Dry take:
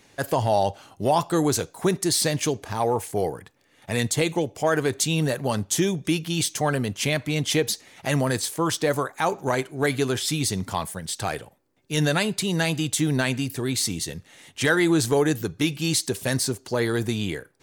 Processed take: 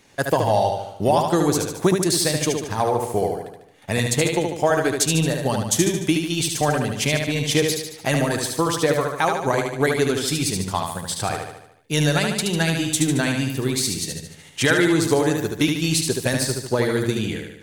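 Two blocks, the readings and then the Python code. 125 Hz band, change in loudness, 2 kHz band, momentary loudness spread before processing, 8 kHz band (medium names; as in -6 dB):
+3.0 dB, +3.0 dB, +3.0 dB, 7 LU, +3.0 dB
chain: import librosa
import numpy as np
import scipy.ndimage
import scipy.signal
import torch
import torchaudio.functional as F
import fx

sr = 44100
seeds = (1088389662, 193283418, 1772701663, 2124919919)

p1 = fx.transient(x, sr, attack_db=5, sustain_db=-2)
y = p1 + fx.echo_feedback(p1, sr, ms=74, feedback_pct=53, wet_db=-4.5, dry=0)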